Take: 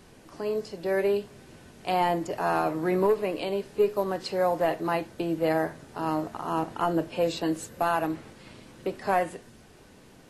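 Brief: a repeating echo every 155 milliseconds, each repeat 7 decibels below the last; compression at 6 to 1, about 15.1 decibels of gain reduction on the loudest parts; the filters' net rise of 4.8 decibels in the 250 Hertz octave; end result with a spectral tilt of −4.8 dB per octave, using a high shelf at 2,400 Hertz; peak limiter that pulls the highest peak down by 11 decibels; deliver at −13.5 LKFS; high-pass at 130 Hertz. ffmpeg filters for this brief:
ffmpeg -i in.wav -af "highpass=130,equalizer=frequency=250:width_type=o:gain=8,highshelf=frequency=2400:gain=6,acompressor=threshold=-32dB:ratio=6,alimiter=level_in=4.5dB:limit=-24dB:level=0:latency=1,volume=-4.5dB,aecho=1:1:155|310|465|620|775:0.447|0.201|0.0905|0.0407|0.0183,volume=24.5dB" out.wav

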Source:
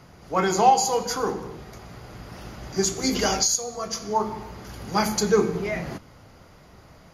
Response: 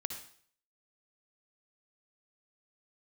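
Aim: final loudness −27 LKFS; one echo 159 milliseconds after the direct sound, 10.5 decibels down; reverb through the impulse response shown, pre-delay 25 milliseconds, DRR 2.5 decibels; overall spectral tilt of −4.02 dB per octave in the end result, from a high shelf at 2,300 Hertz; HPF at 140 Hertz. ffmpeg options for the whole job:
-filter_complex "[0:a]highpass=140,highshelf=frequency=2300:gain=-8,aecho=1:1:159:0.299,asplit=2[link_01][link_02];[1:a]atrim=start_sample=2205,adelay=25[link_03];[link_02][link_03]afir=irnorm=-1:irlink=0,volume=-2.5dB[link_04];[link_01][link_04]amix=inputs=2:normalize=0,volume=-3.5dB"

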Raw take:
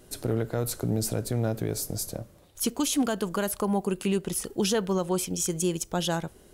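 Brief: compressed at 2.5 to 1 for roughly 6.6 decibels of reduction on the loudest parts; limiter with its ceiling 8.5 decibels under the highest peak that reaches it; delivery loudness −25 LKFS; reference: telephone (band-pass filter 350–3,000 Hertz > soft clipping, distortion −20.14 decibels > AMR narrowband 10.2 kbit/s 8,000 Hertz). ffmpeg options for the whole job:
ffmpeg -i in.wav -af "acompressor=threshold=-31dB:ratio=2.5,alimiter=level_in=3dB:limit=-24dB:level=0:latency=1,volume=-3dB,highpass=350,lowpass=3000,asoftclip=threshold=-30.5dB,volume=19.5dB" -ar 8000 -c:a libopencore_amrnb -b:a 10200 out.amr

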